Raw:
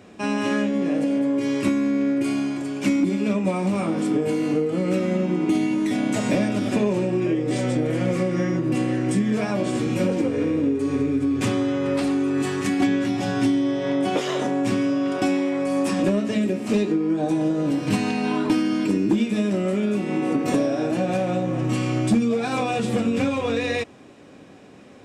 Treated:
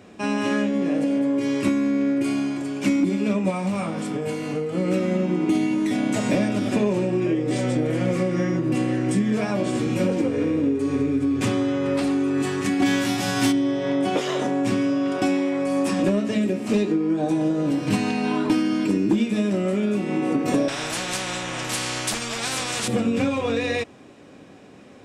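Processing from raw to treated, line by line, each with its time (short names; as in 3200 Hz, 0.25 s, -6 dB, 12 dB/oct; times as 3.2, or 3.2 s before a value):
3.5–4.75 bell 330 Hz -9 dB
12.85–13.51 spectral whitening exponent 0.6
20.68–22.88 spectral compressor 4:1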